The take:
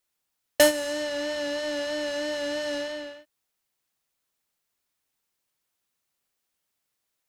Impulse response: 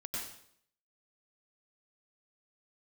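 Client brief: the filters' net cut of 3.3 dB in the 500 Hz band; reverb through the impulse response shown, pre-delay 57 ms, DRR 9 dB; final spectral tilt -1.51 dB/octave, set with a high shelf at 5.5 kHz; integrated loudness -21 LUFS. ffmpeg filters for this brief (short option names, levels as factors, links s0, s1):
-filter_complex "[0:a]equalizer=f=500:t=o:g=-4,highshelf=f=5500:g=-4,asplit=2[s0][s1];[1:a]atrim=start_sample=2205,adelay=57[s2];[s1][s2]afir=irnorm=-1:irlink=0,volume=0.316[s3];[s0][s3]amix=inputs=2:normalize=0,volume=2.37"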